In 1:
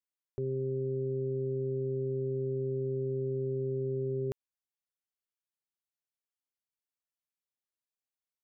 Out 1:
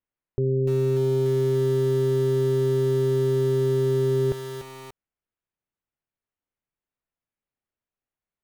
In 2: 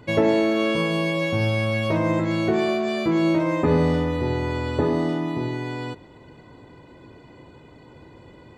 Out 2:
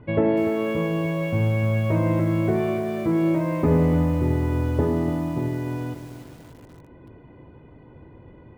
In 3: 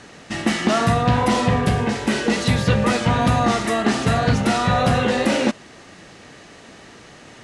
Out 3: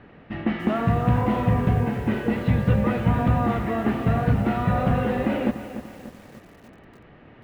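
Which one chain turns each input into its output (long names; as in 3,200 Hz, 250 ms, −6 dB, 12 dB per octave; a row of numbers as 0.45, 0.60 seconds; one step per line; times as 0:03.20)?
low-pass filter 2,900 Hz 24 dB per octave
spectral tilt −2 dB per octave
feedback echo at a low word length 293 ms, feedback 55%, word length 6 bits, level −11 dB
loudness normalisation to −23 LKFS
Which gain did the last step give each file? +6.0, −4.0, −7.5 decibels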